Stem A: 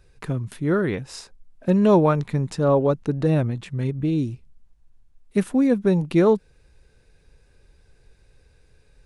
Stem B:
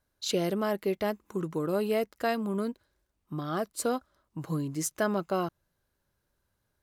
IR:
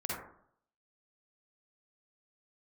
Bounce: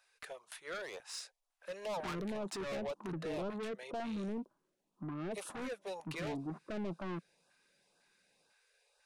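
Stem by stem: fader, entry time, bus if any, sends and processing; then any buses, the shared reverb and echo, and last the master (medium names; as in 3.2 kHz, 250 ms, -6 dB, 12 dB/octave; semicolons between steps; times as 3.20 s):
-4.5 dB, 0.00 s, no send, inverse Chebyshev high-pass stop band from 290 Hz, stop band 40 dB
+2.0 dB, 1.70 s, no send, single-diode clipper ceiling -32.5 dBFS; Chebyshev band-pass 170–1100 Hz, order 3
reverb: none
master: saturation -35.5 dBFS, distortion -5 dB; LFO notch saw up 2 Hz 410–2300 Hz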